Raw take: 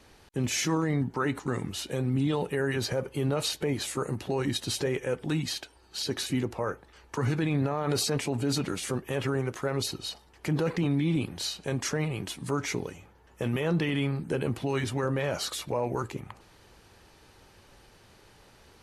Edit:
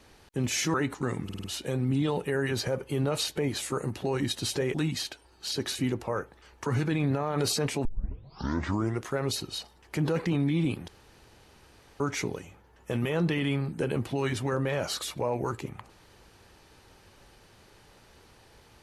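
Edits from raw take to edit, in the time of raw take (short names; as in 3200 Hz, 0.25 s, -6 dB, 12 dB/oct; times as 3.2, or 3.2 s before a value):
0.74–1.19 cut
1.69 stutter 0.05 s, 5 plays
4.99–5.25 cut
8.36 tape start 1.20 s
11.39–12.51 room tone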